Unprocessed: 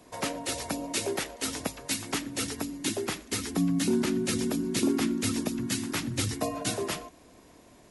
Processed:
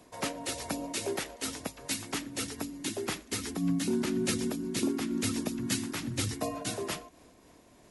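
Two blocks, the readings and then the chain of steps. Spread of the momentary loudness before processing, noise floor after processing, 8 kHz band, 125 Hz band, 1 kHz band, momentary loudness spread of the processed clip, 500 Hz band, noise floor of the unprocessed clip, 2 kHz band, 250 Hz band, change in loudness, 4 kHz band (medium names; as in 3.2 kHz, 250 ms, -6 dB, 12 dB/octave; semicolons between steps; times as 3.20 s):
7 LU, -59 dBFS, -3.0 dB, -3.0 dB, -3.0 dB, 7 LU, -3.0 dB, -55 dBFS, -3.0 dB, -3.5 dB, -3.0 dB, -3.0 dB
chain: random flutter of the level, depth 60%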